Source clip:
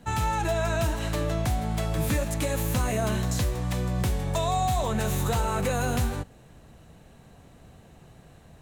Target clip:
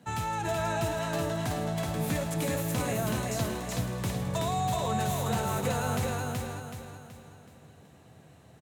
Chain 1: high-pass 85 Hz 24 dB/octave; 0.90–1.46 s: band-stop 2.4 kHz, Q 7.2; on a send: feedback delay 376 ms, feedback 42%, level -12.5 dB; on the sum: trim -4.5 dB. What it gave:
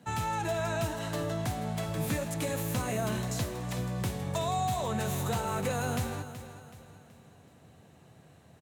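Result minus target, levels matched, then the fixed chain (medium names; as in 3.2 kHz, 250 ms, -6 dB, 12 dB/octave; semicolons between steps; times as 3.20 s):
echo-to-direct -10 dB
high-pass 85 Hz 24 dB/octave; 0.90–1.46 s: band-stop 2.4 kHz, Q 7.2; on a send: feedback delay 376 ms, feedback 42%, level -2.5 dB; on the sum: trim -4.5 dB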